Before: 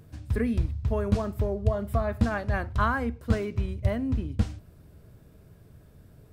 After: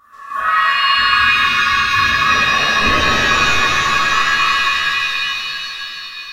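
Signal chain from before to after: split-band scrambler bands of 1 kHz; pitch-shifted reverb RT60 3.4 s, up +7 st, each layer -2 dB, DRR -11 dB; trim -2.5 dB

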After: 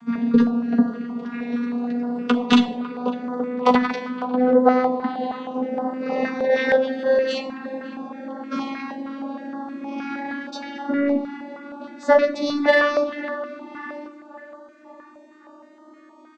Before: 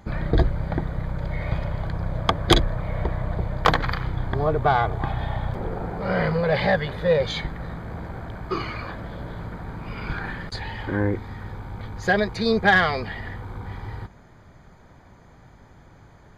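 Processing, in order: vocoder on a note that slides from A#3, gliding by +5 st; in parallel at -10.5 dB: saturation -14.5 dBFS, distortion -16 dB; on the sum: doubling 12 ms -5 dB; band-passed feedback delay 551 ms, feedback 62%, band-pass 960 Hz, level -14 dB; simulated room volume 2300 m³, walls furnished, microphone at 1.3 m; step-sequenced notch 6.4 Hz 570–2400 Hz; trim +3 dB

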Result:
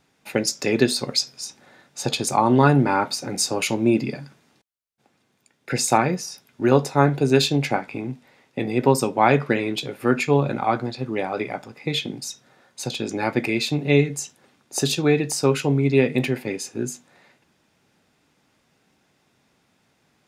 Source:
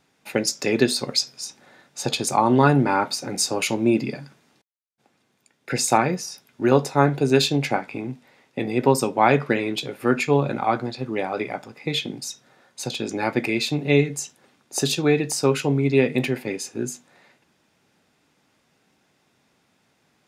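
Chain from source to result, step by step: bass shelf 95 Hz +5.5 dB

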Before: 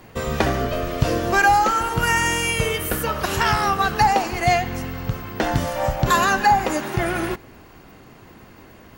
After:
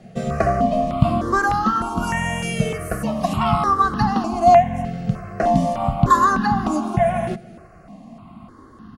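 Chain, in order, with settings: low-pass 11 kHz 24 dB/octave; bass shelf 320 Hz +4 dB; small resonant body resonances 210/680/1100 Hz, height 16 dB, ringing for 35 ms; on a send: delay 314 ms -23.5 dB; on the sum: stepped phaser 3.3 Hz 280–2300 Hz; trim -5 dB

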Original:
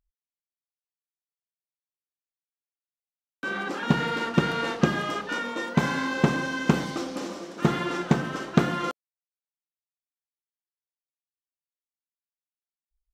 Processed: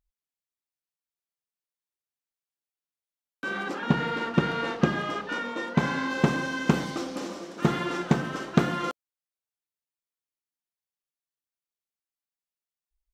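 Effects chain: 3.73–6.09 s: treble shelf 5.4 kHz -> 8.4 kHz -11.5 dB; trim -1 dB

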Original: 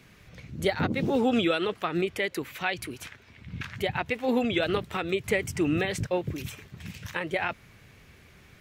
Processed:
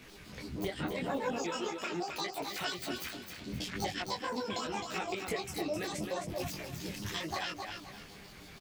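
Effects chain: pitch shift switched off and on +12 st, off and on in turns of 80 ms; peaking EQ 110 Hz -5.5 dB 1 oct; compression 6:1, threshold -38 dBFS, peak gain reduction 16.5 dB; on a send: feedback delay 262 ms, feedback 34%, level -6 dB; on the sum: detune thickener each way 27 cents; trim +7 dB

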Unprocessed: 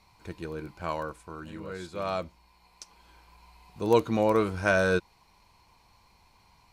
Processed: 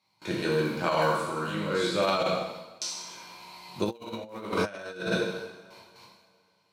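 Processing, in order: spectral sustain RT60 0.56 s; high-pass 120 Hz 24 dB/octave; gate with hold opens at -49 dBFS; peaking EQ 3.9 kHz +6 dB 0.87 oct; two-slope reverb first 0.97 s, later 2.6 s, from -26 dB, DRR -2 dB; compressor with a negative ratio -28 dBFS, ratio -0.5

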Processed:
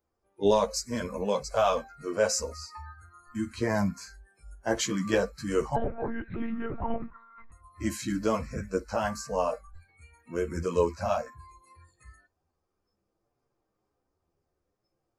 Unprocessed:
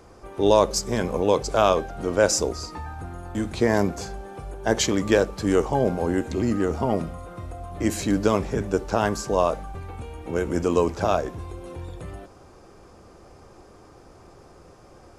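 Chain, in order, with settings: spectral noise reduction 26 dB; chorus voices 4, 0.27 Hz, delay 12 ms, depth 3.5 ms; 5.76–7.52 s: monotone LPC vocoder at 8 kHz 230 Hz; trim -3 dB

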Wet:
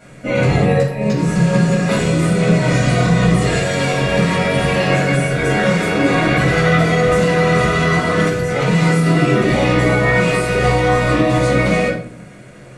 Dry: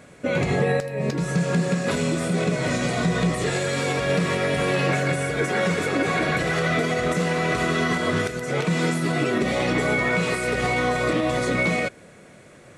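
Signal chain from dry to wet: simulated room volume 490 m³, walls furnished, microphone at 7.3 m; trim -3.5 dB

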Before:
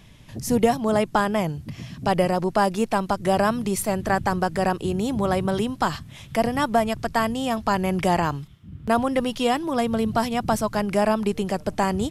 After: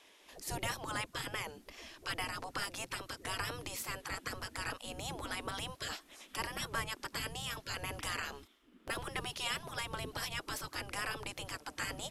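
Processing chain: spectral gate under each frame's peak -15 dB weak; wow and flutter 28 cents; trim -5 dB

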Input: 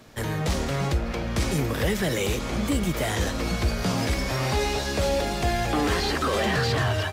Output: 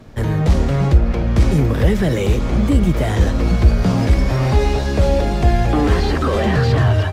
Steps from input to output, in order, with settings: tilt EQ -2.5 dB/octave; trim +4 dB

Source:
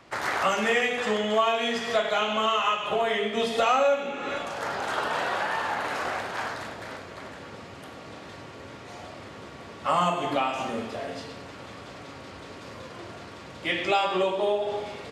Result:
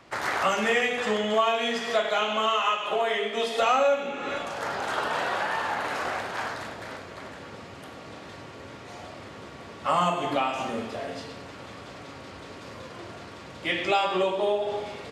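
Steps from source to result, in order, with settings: 1.33–3.60 s: high-pass 140 Hz -> 350 Hz 12 dB/octave

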